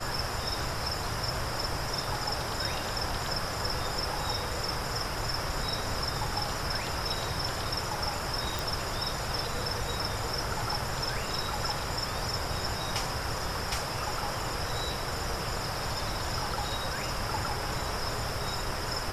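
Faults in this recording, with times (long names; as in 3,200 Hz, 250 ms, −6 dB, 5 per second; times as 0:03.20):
0:08.59: click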